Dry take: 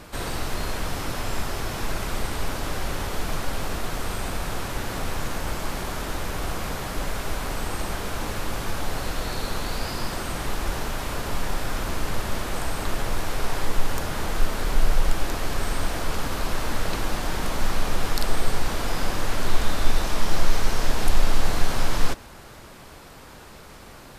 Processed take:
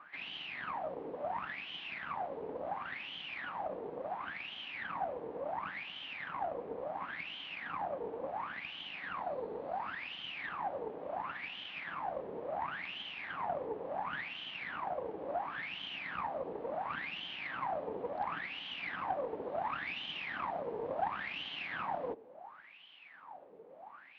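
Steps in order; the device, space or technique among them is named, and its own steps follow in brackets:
wah-wah guitar rig (LFO wah 0.71 Hz 440–3,100 Hz, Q 13; tube saturation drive 36 dB, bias 0.7; loudspeaker in its box 100–3,500 Hz, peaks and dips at 110 Hz −4 dB, 180 Hz +6 dB, 280 Hz +6 dB, 440 Hz −4 dB, 780 Hz +4 dB, 1,400 Hz −5 dB)
level +10.5 dB

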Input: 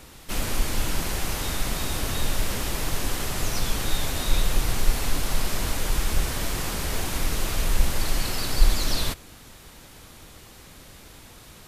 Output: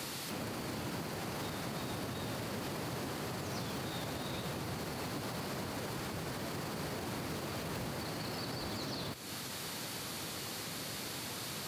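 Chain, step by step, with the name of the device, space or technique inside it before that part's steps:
broadcast voice chain (high-pass filter 110 Hz 24 dB per octave; de-essing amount 80%; downward compressor 4 to 1, threshold −43 dBFS, peak gain reduction 11.5 dB; parametric band 4,500 Hz +6 dB 0.26 octaves; brickwall limiter −37 dBFS, peak gain reduction 7 dB)
level +6.5 dB

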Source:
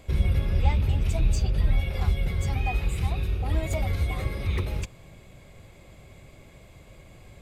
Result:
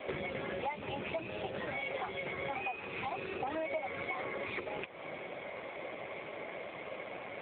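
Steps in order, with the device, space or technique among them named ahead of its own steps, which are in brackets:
voicemail (band-pass filter 440–2,700 Hz; downward compressor 8 to 1, threshold −50 dBFS, peak gain reduction 21 dB; level +16.5 dB; AMR narrowband 7.4 kbit/s 8,000 Hz)

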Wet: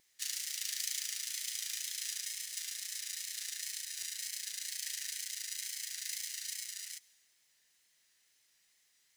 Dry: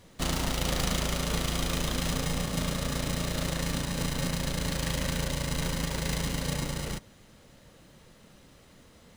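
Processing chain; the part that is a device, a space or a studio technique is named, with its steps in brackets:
elliptic high-pass filter 1,800 Hz, stop band 60 dB
flat-topped bell 1,900 Hz −9 dB 2.4 octaves
plain cassette with noise reduction switched in (one half of a high-frequency compander decoder only; tape wow and flutter; white noise bed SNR 38 dB)

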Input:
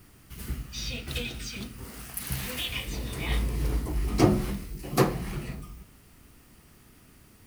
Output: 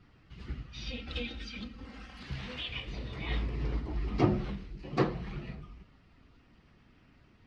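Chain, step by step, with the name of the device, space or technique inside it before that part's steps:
clip after many re-uploads (low-pass filter 4,300 Hz 24 dB per octave; spectral magnitudes quantised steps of 15 dB)
0:00.86–0:02.23: comb filter 3.8 ms, depth 71%
level −5 dB

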